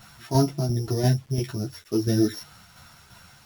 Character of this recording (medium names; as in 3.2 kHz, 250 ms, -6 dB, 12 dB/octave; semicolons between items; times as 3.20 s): a buzz of ramps at a fixed pitch in blocks of 8 samples; tremolo saw down 2.9 Hz, depth 55%; a quantiser's noise floor 10-bit, dither none; a shimmering, thickened sound